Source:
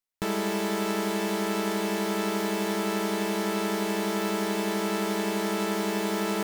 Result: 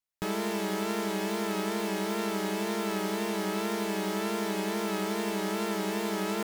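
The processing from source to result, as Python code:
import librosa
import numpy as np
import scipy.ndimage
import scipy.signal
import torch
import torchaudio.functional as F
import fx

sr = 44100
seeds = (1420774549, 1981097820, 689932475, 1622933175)

y = fx.wow_flutter(x, sr, seeds[0], rate_hz=2.1, depth_cents=65.0)
y = y * 10.0 ** (-3.0 / 20.0)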